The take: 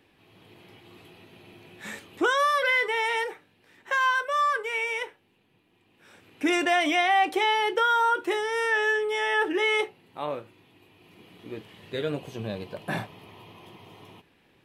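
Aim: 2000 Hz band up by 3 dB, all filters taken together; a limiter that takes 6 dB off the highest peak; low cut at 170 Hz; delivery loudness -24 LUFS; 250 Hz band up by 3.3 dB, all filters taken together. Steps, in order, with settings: HPF 170 Hz; bell 250 Hz +5.5 dB; bell 2000 Hz +3.5 dB; gain +1.5 dB; limiter -15.5 dBFS

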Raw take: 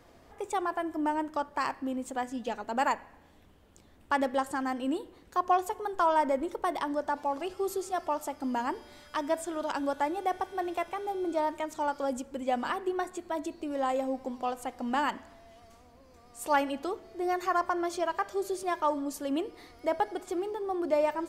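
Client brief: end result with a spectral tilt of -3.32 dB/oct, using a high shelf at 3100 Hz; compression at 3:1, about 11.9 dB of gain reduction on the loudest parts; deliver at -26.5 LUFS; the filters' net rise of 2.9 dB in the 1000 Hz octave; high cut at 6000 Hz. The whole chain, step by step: LPF 6000 Hz; bell 1000 Hz +3 dB; high shelf 3100 Hz +6.5 dB; compressor 3:1, threshold -35 dBFS; gain +11 dB

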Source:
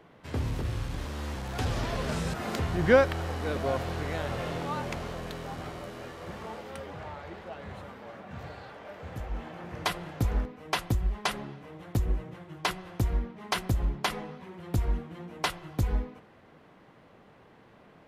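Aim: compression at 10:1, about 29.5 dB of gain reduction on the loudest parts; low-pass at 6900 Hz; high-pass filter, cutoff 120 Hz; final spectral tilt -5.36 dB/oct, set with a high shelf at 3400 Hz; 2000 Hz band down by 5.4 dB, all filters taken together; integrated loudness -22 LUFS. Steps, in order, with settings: HPF 120 Hz; LPF 6900 Hz; bell 2000 Hz -9 dB; high shelf 3400 Hz +5.5 dB; compressor 10:1, threshold -46 dBFS; gain +28.5 dB

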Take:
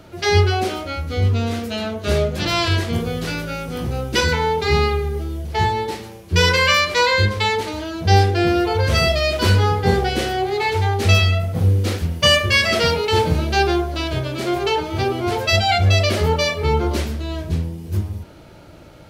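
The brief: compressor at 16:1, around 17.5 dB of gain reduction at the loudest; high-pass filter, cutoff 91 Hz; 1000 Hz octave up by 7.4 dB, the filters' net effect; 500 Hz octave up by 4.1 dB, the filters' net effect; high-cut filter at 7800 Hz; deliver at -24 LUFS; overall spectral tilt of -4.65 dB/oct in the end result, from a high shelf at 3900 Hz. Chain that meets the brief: HPF 91 Hz; LPF 7800 Hz; bell 500 Hz +3 dB; bell 1000 Hz +8 dB; high shelf 3900 Hz +7 dB; compressor 16:1, threshold -24 dBFS; gain +4 dB

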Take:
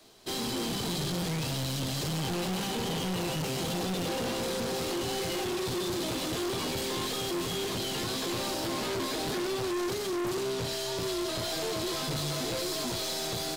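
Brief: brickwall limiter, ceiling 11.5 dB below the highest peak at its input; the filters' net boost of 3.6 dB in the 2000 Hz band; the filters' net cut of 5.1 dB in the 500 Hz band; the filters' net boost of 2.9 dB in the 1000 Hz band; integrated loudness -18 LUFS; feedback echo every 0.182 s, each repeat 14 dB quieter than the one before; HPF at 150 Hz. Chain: HPF 150 Hz; bell 500 Hz -9 dB; bell 1000 Hz +5.5 dB; bell 2000 Hz +3.5 dB; limiter -33 dBFS; feedback echo 0.182 s, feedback 20%, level -14 dB; gain +22 dB

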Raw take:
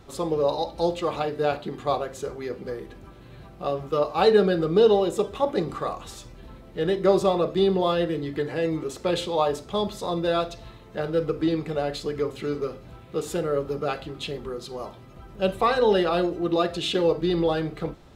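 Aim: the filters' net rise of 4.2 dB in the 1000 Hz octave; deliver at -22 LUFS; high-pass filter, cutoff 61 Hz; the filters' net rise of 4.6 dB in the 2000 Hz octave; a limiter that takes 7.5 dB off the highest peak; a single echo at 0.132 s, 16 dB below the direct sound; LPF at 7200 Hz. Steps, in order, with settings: HPF 61 Hz; LPF 7200 Hz; bell 1000 Hz +4.5 dB; bell 2000 Hz +4.5 dB; limiter -12.5 dBFS; echo 0.132 s -16 dB; gain +3 dB

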